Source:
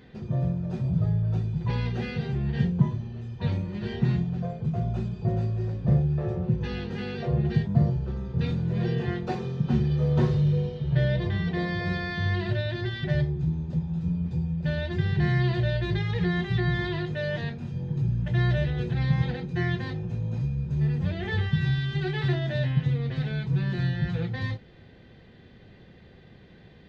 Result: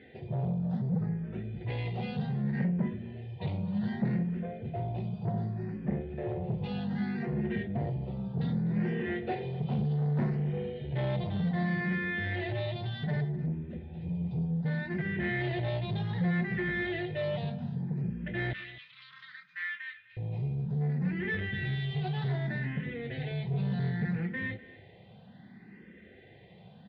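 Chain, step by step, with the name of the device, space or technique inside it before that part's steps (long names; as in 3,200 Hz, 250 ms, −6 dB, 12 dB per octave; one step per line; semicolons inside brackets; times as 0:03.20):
barber-pole phaser into a guitar amplifier (frequency shifter mixed with the dry sound +0.65 Hz; soft clipping −26.5 dBFS, distortion −12 dB; loudspeaker in its box 110–3,800 Hz, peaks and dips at 200 Hz +7 dB, 730 Hz +5 dB, 1,200 Hz −6 dB, 2,000 Hz +6 dB)
0:18.53–0:20.17: elliptic high-pass filter 1,200 Hz, stop band 40 dB
single-tap delay 251 ms −19 dB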